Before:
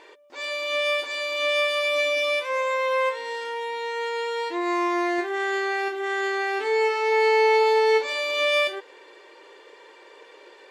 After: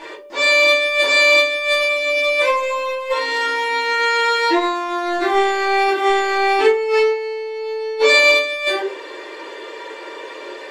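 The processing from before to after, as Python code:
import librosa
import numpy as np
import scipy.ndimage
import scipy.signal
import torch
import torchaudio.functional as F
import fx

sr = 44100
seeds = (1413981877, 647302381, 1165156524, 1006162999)

y = fx.over_compress(x, sr, threshold_db=-27.0, ratio=-0.5)
y = fx.room_shoebox(y, sr, seeds[0], volume_m3=120.0, walls='furnished', distance_m=2.5)
y = F.gain(torch.from_numpy(y), 5.5).numpy()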